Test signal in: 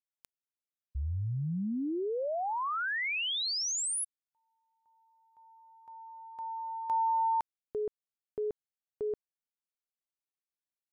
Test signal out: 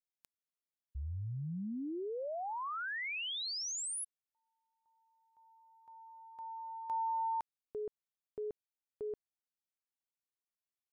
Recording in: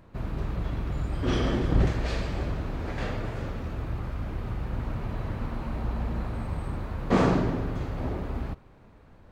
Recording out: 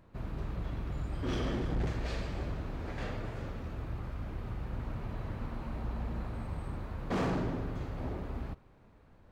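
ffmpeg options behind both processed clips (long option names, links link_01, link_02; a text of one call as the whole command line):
ffmpeg -i in.wav -af "volume=21.5dB,asoftclip=hard,volume=-21.5dB,volume=-6.5dB" out.wav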